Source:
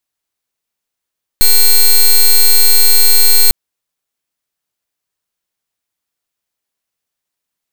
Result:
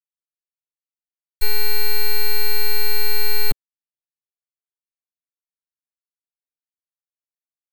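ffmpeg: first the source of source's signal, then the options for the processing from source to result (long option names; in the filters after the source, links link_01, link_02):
-f lavfi -i "aevalsrc='0.501*(2*lt(mod(4220*t,1),0.11)-1)':duration=2.1:sample_rate=44100"
-filter_complex "[0:a]agate=range=-33dB:threshold=-3dB:ratio=3:detection=peak,aecho=1:1:7.3:0.74,acrossover=split=260|650|2700[link_01][link_02][link_03][link_04];[link_04]alimiter=limit=-20dB:level=0:latency=1[link_05];[link_01][link_02][link_03][link_05]amix=inputs=4:normalize=0"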